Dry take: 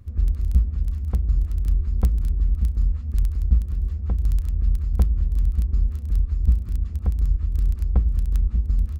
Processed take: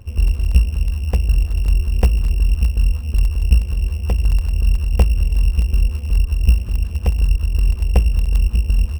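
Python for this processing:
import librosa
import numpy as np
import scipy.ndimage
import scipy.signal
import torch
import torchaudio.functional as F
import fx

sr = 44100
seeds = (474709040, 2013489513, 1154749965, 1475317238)

y = np.r_[np.sort(x[:len(x) // 16 * 16].reshape(-1, 16), axis=1).ravel(), x[len(x) // 16 * 16:]]
y = fx.band_shelf(y, sr, hz=660.0, db=8.5, octaves=1.7)
y = y * librosa.db_to_amplitude(5.0)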